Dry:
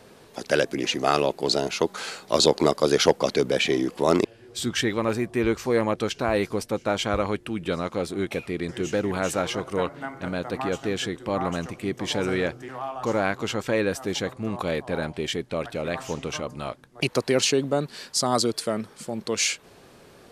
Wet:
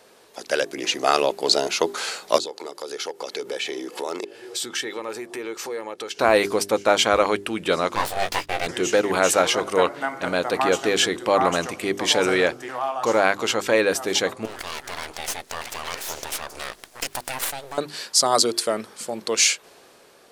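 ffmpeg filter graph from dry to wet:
-filter_complex "[0:a]asettb=1/sr,asplit=3[s0][s1][s2];[s0]atrim=end=2.384[s3];[s1]atrim=start=2.38:end=6.19,asetpts=PTS-STARTPTS,afade=t=in:d=0.004:c=qsin,afade=t=out:st=3.806:d=0.004:c=qsin,highpass=170,acompressor=threshold=0.01:ratio=3:attack=3.2:release=140:knee=1:detection=peak,aecho=1:1:2.3:0.35,atrim=end_sample=168021[s4];[s2]atrim=start=6.186[s5];[s3][s4]acrossfade=d=0.004:c1=hsin:c2=qsin[s6];[s6][s5]acrossfade=d=0.004:c1=qsin:c2=hsin,asettb=1/sr,asplit=3[s7][s8][s9];[s7]atrim=end=7.954[s10];[s8]atrim=start=7.95:end=8.67,asetpts=PTS-STARTPTS,afade=t=in:d=0.004:c=qsin,afade=t=out:st=0.716:d=0.004:c=qsin,agate=range=0.0398:threshold=0.0126:ratio=16:release=100:detection=peak,aeval=exprs='abs(val(0))':c=same,asplit=2[s11][s12];[s12]adelay=19,volume=0.562[s13];[s11][s13]amix=inputs=2:normalize=0,atrim=end_sample=31752[s14];[s9]atrim=start=8.666[s15];[s10][s14]acrossfade=d=0.004:c1=hsin:c2=qsin[s16];[s16][s15]acrossfade=d=0.004:c1=qsin:c2=hsin,asettb=1/sr,asplit=3[s17][s18][s19];[s17]atrim=end=14.454[s20];[s18]atrim=start=14.45:end=17.78,asetpts=PTS-STARTPTS,afade=t=in:d=0.004:c=qsin,afade=t=out:st=3.326:d=0.004:c=qsin,highshelf=f=2100:g=9,acompressor=threshold=0.00891:ratio=2:attack=3.2:release=140:knee=1:detection=peak,aeval=exprs='abs(val(0))':c=same[s21];[s19]atrim=start=17.776[s22];[s20][s21]acrossfade=d=0.004:c1=hsin:c2=qsin[s23];[s23][s22]acrossfade=d=0.004:c1=qsin:c2=hsin,bass=f=250:g=-14,treble=f=4000:g=3,bandreject=f=50:t=h:w=6,bandreject=f=100:t=h:w=6,bandreject=f=150:t=h:w=6,bandreject=f=200:t=h:w=6,bandreject=f=250:t=h:w=6,bandreject=f=300:t=h:w=6,bandreject=f=350:t=h:w=6,bandreject=f=400:t=h:w=6,dynaudnorm=f=140:g=13:m=3.76,volume=0.891"

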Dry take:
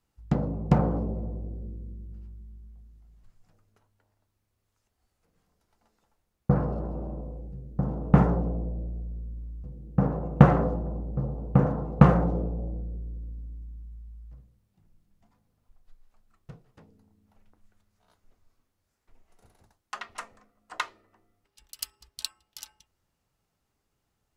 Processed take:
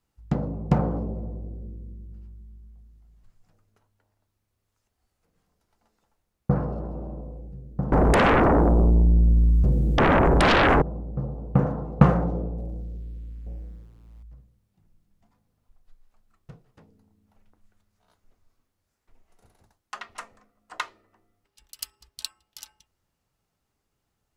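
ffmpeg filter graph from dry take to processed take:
-filter_complex "[0:a]asettb=1/sr,asplit=3[s0][s1][s2];[s0]atrim=end=7.924[s3];[s1]atrim=start=7.92:end=10.82,asetpts=PTS-STARTPTS,afade=t=in:d=0.004:c=qsin,afade=t=out:st=2.896:d=0.004:c=qsin,equalizer=f=7500:t=o:w=0.29:g=3.5,acompressor=threshold=0.0708:ratio=10:attack=3.2:release=140:knee=1:detection=peak,aeval=exprs='0.188*sin(PI/2*8.91*val(0)/0.188)':c=same[s4];[s2]atrim=start=10.816[s5];[s3][s4]acrossfade=d=0.004:c1=hsin:c2=qsin[s6];[s6][s5]acrossfade=d=0.004:c1=qsin:c2=hsin,asettb=1/sr,asplit=3[s7][s8][s9];[s7]atrim=end=12.584[s10];[s8]atrim=start=12.58:end=14.23,asetpts=PTS-STARTPTS,afade=t=in:d=0.004:c=qsin,afade=t=out:st=1.646:d=0.004:c=qsin,aeval=exprs='val(0)*gte(abs(val(0)),0.0015)':c=same,aecho=1:1:880:0.335,atrim=end_sample=72765[s11];[s9]atrim=start=14.226[s12];[s10][s11]acrossfade=d=0.004:c1=hsin:c2=qsin[s13];[s13][s12]acrossfade=d=0.004:c1=qsin:c2=hsin"

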